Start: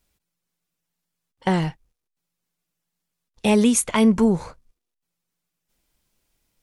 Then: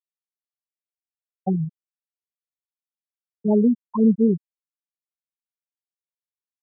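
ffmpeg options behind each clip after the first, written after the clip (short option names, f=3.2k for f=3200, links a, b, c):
-af "afftfilt=real='re*gte(hypot(re,im),0.562)':imag='im*gte(hypot(re,im),0.562)':win_size=1024:overlap=0.75"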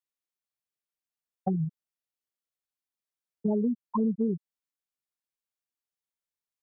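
-af "acompressor=threshold=-25dB:ratio=5"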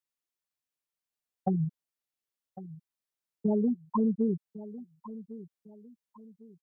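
-af "aecho=1:1:1103|2206|3309:0.158|0.0523|0.0173"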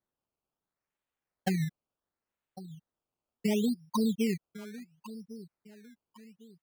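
-af "acrusher=samples=16:mix=1:aa=0.000001:lfo=1:lforange=16:lforate=0.71,volume=-1.5dB"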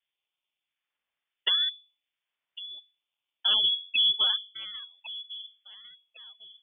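-af "bandreject=f=50:t=h:w=6,bandreject=f=100:t=h:w=6,bandreject=f=150:t=h:w=6,bandreject=f=200:t=h:w=6,bandreject=f=250:t=h:w=6,bandreject=f=300:t=h:w=6,bandreject=f=350:t=h:w=6,bandreject=f=400:t=h:w=6,bandreject=f=450:t=h:w=6,lowpass=f=3.1k:t=q:w=0.5098,lowpass=f=3.1k:t=q:w=0.6013,lowpass=f=3.1k:t=q:w=0.9,lowpass=f=3.1k:t=q:w=2.563,afreqshift=-3600,volume=4.5dB"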